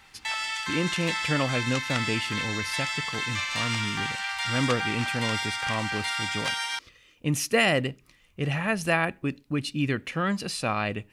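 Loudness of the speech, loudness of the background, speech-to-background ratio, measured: −29.0 LKFS, −29.0 LKFS, 0.0 dB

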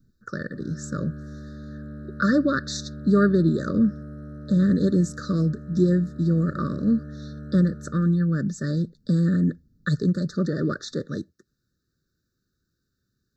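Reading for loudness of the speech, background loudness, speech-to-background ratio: −24.0 LKFS, −39.0 LKFS, 15.0 dB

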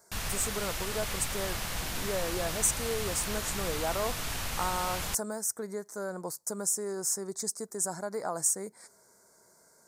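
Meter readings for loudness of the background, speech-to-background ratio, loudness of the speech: −34.5 LKFS, 1.5 dB, −33.0 LKFS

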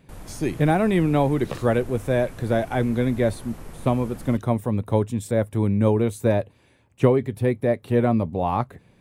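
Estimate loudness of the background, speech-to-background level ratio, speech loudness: −42.5 LKFS, 19.5 dB, −23.0 LKFS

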